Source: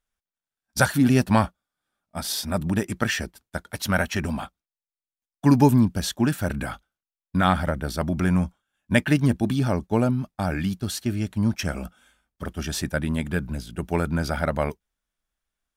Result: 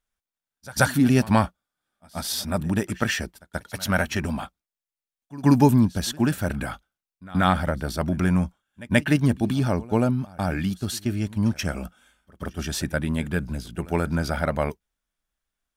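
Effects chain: pre-echo 0.132 s -21 dB

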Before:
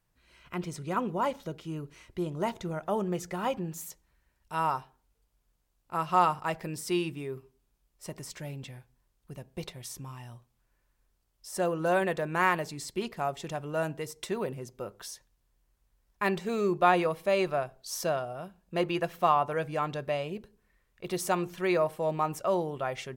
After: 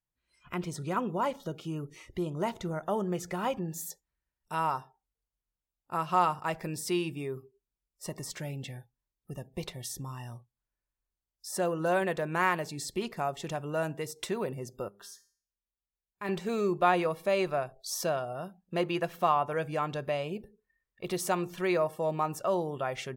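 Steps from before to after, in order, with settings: spectral noise reduction 21 dB; in parallel at +1 dB: compressor, threshold -39 dBFS, peak gain reduction 20.5 dB; 14.88–16.29 on the sum: resonator 200 Hz, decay 0.47 s, harmonics all, mix 70%; gain -3 dB

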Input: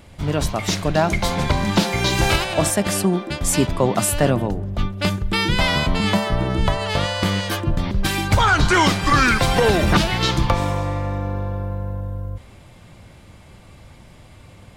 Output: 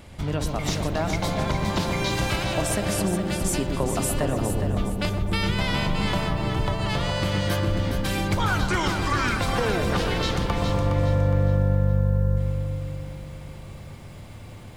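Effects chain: compressor 2.5:1, threshold -27 dBFS, peak gain reduction 11 dB; on a send: darkening echo 0.122 s, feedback 80%, low-pass 980 Hz, level -5 dB; on the sum: lo-fi delay 0.414 s, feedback 35%, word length 9-bit, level -7 dB

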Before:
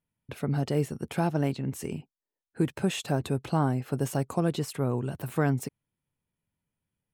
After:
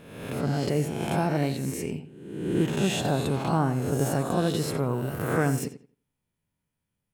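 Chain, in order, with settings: spectral swells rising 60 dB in 1.02 s; darkening echo 87 ms, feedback 24%, low-pass 4000 Hz, level -11.5 dB

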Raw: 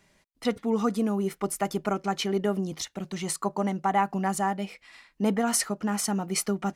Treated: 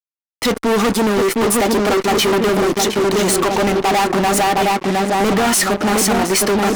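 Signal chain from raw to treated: resonant low shelf 210 Hz -10 dB, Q 1.5; darkening echo 0.713 s, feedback 54%, low-pass 840 Hz, level -4 dB; fuzz box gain 39 dB, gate -45 dBFS

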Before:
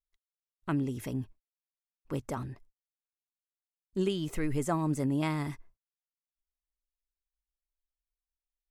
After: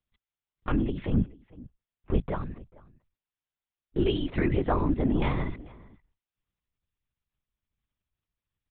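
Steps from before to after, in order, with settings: 1.08–2.31 bell 140 Hz +8 dB 1.9 oct; outdoor echo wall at 76 m, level -22 dB; LPC vocoder at 8 kHz whisper; gain +4.5 dB

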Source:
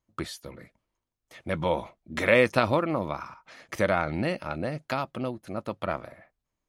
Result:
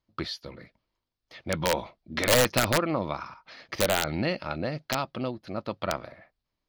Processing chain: resonant high shelf 6200 Hz -10.5 dB, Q 3; wrapped overs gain 13 dB

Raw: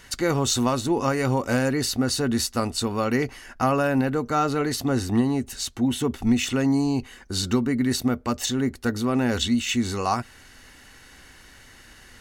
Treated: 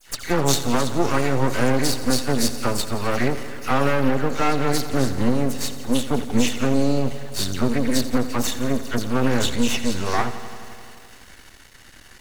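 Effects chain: dispersion lows, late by 89 ms, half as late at 2200 Hz; half-wave rectifier; lo-fi delay 86 ms, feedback 80%, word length 8-bit, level -14.5 dB; gain +5.5 dB

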